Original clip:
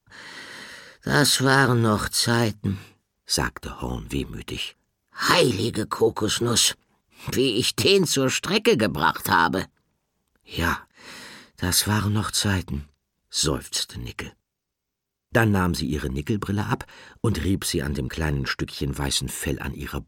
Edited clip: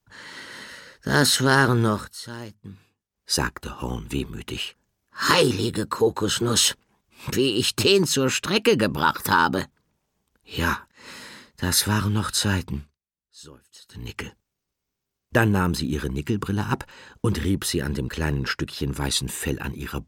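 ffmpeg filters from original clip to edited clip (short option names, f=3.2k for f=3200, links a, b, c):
-filter_complex "[0:a]asplit=5[a][b][c][d][e];[a]atrim=end=2.07,asetpts=PTS-STARTPTS,afade=t=out:st=1.86:d=0.21:silence=0.16788[f];[b]atrim=start=2.07:end=3.1,asetpts=PTS-STARTPTS,volume=-15.5dB[g];[c]atrim=start=3.1:end=12.98,asetpts=PTS-STARTPTS,afade=t=in:d=0.21:silence=0.16788,afade=t=out:st=9.63:d=0.25:silence=0.0749894[h];[d]atrim=start=12.98:end=13.83,asetpts=PTS-STARTPTS,volume=-22.5dB[i];[e]atrim=start=13.83,asetpts=PTS-STARTPTS,afade=t=in:d=0.25:silence=0.0749894[j];[f][g][h][i][j]concat=n=5:v=0:a=1"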